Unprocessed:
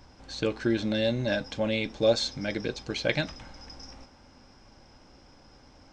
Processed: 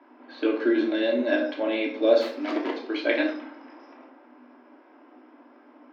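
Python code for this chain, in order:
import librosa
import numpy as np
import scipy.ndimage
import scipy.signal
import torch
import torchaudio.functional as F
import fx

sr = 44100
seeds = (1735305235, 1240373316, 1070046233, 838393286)

y = fx.self_delay(x, sr, depth_ms=0.57, at=(2.21, 2.73))
y = scipy.signal.sosfilt(scipy.signal.cheby1(8, 1.0, 240.0, 'highpass', fs=sr, output='sos'), y)
y = fx.env_lowpass(y, sr, base_hz=2300.0, full_db=-25.0)
y = fx.air_absorb(y, sr, metres=300.0)
y = fx.room_shoebox(y, sr, seeds[0], volume_m3=620.0, walls='furnished', distance_m=2.9)
y = y * librosa.db_to_amplitude(2.5)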